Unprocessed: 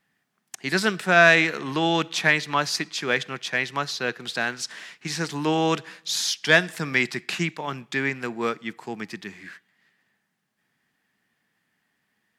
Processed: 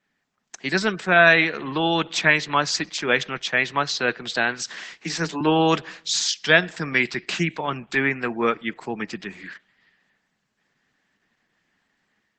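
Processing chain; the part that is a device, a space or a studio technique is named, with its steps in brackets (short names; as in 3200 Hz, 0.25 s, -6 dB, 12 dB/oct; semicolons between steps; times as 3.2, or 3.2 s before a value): 5.01–5.41 Chebyshev high-pass 160 Hz, order 6; 6.57–7.4 dynamic EQ 9300 Hz, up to -4 dB, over -47 dBFS, Q 1.6; noise-suppressed video call (HPF 110 Hz 12 dB/oct; spectral gate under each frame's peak -30 dB strong; AGC gain up to 4.5 dB; Opus 12 kbps 48000 Hz)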